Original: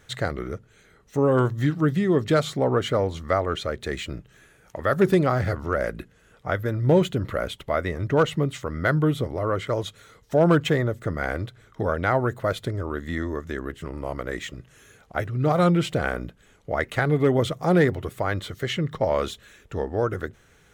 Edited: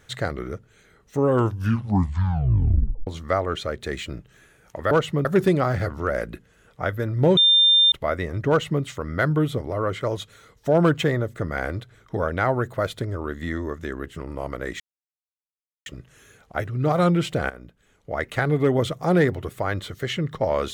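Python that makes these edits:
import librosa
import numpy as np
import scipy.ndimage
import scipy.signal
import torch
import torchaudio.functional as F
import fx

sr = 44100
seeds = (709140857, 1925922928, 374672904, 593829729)

y = fx.edit(x, sr, fx.tape_stop(start_s=1.32, length_s=1.75),
    fx.bleep(start_s=7.03, length_s=0.55, hz=3600.0, db=-12.5),
    fx.duplicate(start_s=8.15, length_s=0.34, to_s=4.91),
    fx.insert_silence(at_s=14.46, length_s=1.06),
    fx.fade_in_from(start_s=16.1, length_s=0.89, floor_db=-14.5), tone=tone)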